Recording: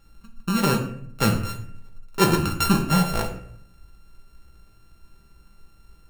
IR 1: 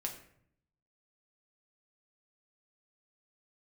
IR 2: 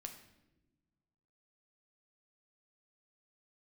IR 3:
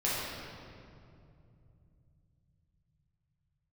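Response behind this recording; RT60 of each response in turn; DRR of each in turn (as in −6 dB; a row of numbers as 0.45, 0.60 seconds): 1; 0.65 s, non-exponential decay, 2.6 s; 0.5, 3.5, −9.0 decibels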